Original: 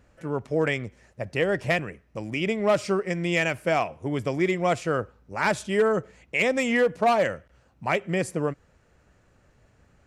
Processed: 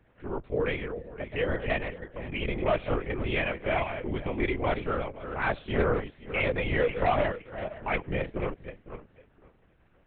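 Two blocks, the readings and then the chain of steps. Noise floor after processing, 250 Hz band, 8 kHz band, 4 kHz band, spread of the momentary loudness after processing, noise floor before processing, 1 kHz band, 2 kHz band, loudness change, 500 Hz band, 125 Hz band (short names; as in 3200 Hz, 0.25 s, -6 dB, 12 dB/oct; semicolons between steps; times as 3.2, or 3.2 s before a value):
-64 dBFS, -5.5 dB, under -40 dB, -5.0 dB, 11 LU, -62 dBFS, -4.0 dB, -4.5 dB, -4.5 dB, -4.5 dB, -2.0 dB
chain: regenerating reverse delay 0.256 s, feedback 40%, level -8.5 dB; LPC vocoder at 8 kHz whisper; gain -4.5 dB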